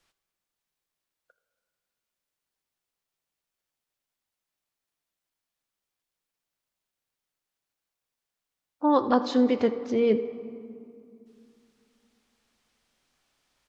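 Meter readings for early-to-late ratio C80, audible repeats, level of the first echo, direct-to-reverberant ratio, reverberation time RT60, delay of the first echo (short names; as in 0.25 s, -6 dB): 12.5 dB, 1, -18.5 dB, 10.5 dB, 2.6 s, 80 ms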